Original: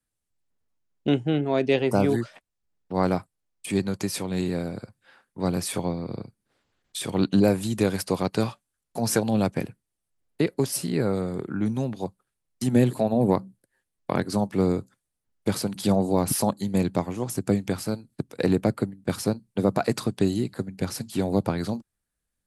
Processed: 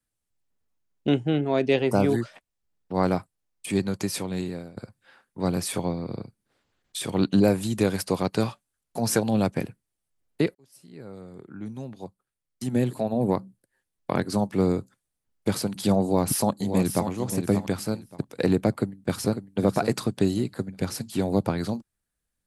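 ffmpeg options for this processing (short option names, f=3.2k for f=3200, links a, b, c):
-filter_complex "[0:a]asplit=2[a][b];[b]afade=t=in:st=16.02:d=0.01,afade=t=out:st=17.08:d=0.01,aecho=0:1:580|1160|1740:0.398107|0.0796214|0.0159243[c];[a][c]amix=inputs=2:normalize=0,asplit=2[d][e];[e]afade=t=in:st=18.69:d=0.01,afade=t=out:st=19.5:d=0.01,aecho=0:1:550|1100|1650:0.334965|0.0837414|0.0209353[f];[d][f]amix=inputs=2:normalize=0,asplit=3[g][h][i];[g]atrim=end=4.77,asetpts=PTS-STARTPTS,afade=t=out:st=4.2:d=0.57:silence=0.141254[j];[h]atrim=start=4.77:end=10.55,asetpts=PTS-STARTPTS,afade=t=in:d=0.004:c=hsin:silence=0.141254,afade=t=out:st=5.776:d=0.004:c=hsin[k];[i]atrim=start=10.55,asetpts=PTS-STARTPTS,afade=t=in:d=3.68[l];[j][k][l]concat=n=3:v=0:a=1"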